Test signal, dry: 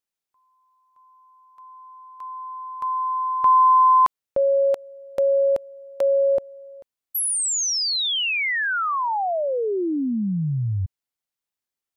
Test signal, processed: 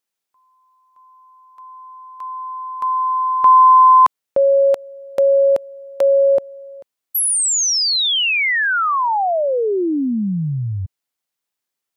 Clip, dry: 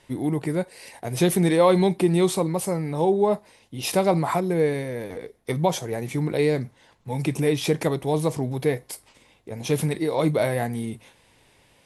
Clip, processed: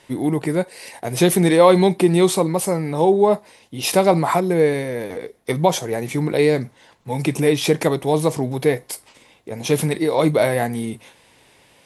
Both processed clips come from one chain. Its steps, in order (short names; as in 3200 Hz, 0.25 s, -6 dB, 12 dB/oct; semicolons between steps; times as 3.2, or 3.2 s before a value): low shelf 98 Hz -11 dB; gain +6 dB